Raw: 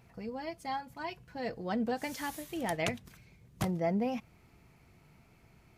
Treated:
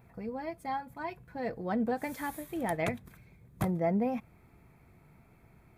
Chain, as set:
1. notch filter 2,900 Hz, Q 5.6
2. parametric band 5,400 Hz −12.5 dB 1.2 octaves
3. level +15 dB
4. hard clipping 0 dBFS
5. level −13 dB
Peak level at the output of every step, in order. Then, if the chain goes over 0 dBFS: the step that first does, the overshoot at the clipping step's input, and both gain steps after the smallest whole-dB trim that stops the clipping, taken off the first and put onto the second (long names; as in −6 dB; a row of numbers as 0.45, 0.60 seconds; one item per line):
−17.0, −20.0, −5.0, −5.0, −18.0 dBFS
no step passes full scale